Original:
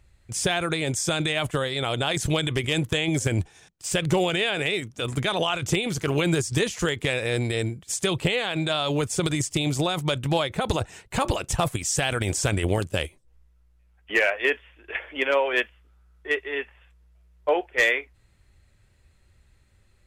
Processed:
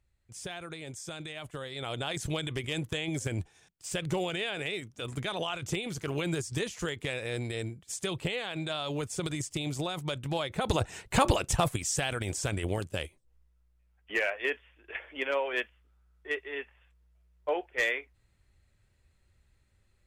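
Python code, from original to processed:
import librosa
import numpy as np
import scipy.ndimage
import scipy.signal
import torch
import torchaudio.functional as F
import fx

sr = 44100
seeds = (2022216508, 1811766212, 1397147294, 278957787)

y = fx.gain(x, sr, db=fx.line((1.46, -16.0), (1.92, -9.0), (10.34, -9.0), (11.05, 2.0), (12.23, -8.0)))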